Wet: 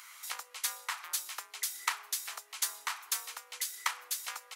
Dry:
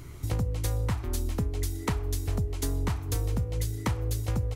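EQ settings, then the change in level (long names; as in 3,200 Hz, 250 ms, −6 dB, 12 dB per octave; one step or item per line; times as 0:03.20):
high-pass filter 1,100 Hz 24 dB per octave
+5.0 dB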